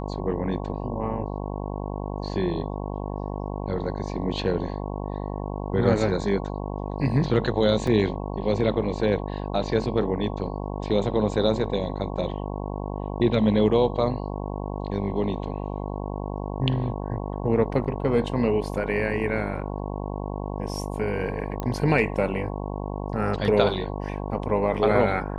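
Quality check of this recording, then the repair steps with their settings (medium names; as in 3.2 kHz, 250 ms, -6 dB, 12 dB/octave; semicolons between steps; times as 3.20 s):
buzz 50 Hz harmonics 22 -31 dBFS
7.87 s: dropout 3.4 ms
21.60 s: pop -17 dBFS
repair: de-click; de-hum 50 Hz, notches 22; interpolate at 7.87 s, 3.4 ms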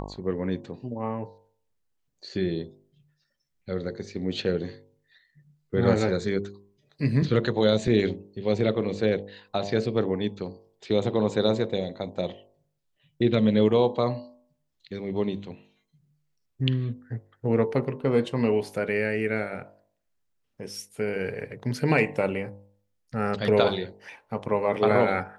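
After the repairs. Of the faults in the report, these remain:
nothing left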